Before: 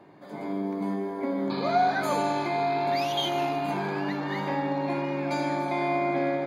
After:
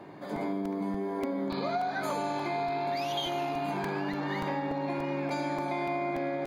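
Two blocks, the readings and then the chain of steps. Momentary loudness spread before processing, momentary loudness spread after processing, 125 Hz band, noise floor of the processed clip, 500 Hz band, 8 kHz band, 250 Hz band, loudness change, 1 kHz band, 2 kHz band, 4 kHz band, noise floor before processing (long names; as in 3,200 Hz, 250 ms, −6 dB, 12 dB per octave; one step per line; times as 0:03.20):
6 LU, 2 LU, −3.5 dB, −36 dBFS, −4.5 dB, −4.5 dB, −3.5 dB, −4.5 dB, −5.0 dB, −4.5 dB, −4.5 dB, −41 dBFS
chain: downward compressor 6 to 1, threshold −35 dBFS, peak gain reduction 15 dB
regular buffer underruns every 0.29 s, samples 128, repeat, from 0:00.36
level +5.5 dB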